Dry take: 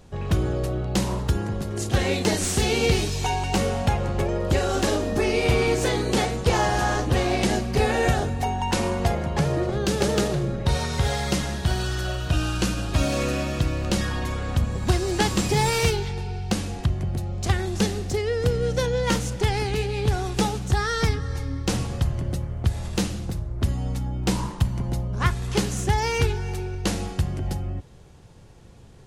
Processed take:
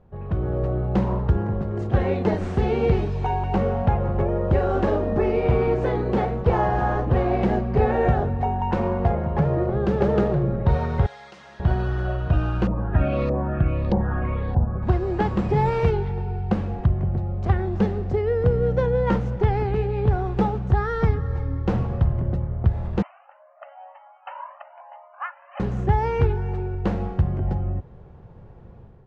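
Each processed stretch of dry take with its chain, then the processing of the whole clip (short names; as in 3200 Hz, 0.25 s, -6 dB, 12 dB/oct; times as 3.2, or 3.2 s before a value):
11.06–11.6 LPF 7900 Hz + differentiator + fast leveller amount 50%
12.67–14.83 LFO low-pass saw up 1.6 Hz 730–4900 Hz + cascading phaser falling 1.8 Hz
23.02–25.6 brick-wall FIR band-pass 550–3100 Hz + cascading flanger rising 1 Hz
whole clip: LPF 1200 Hz 12 dB/oct; bell 290 Hz -7 dB 0.25 oct; AGC gain up to 9 dB; gain -4.5 dB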